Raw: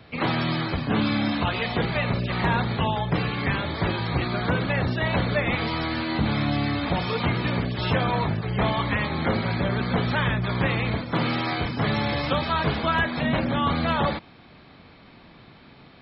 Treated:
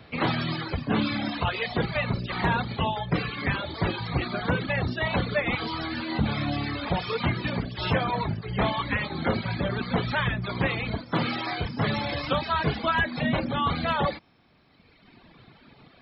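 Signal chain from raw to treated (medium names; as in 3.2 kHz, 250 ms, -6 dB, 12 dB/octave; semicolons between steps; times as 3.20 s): reverb removal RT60 1.8 s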